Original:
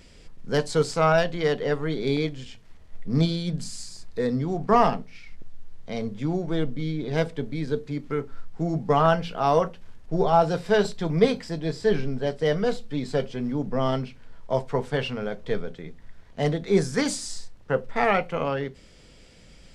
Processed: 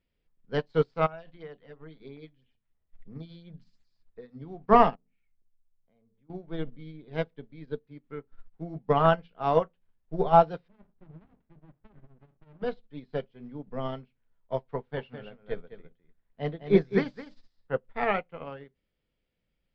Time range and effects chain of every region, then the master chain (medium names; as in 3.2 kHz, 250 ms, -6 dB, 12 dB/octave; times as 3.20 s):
1.06–4.42 s: compression, threshold -23 dBFS + hum notches 60/120/180/240/300 Hz + LFO notch sine 3 Hz 370–5100 Hz
4.95–6.30 s: hum notches 50/100/150/200/250/300/350/400/450 Hz + compression 2.5:1, threshold -38 dBFS + tape spacing loss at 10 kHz 28 dB
10.68–12.62 s: inverse Chebyshev low-pass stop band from 4.3 kHz, stop band 50 dB + compression 10:1, threshold -24 dBFS + sliding maximum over 65 samples
14.76–17.74 s: distance through air 63 m + delay 209 ms -4.5 dB
whole clip: low-pass 3.8 kHz 24 dB/octave; upward expansion 2.5:1, over -36 dBFS; trim +2 dB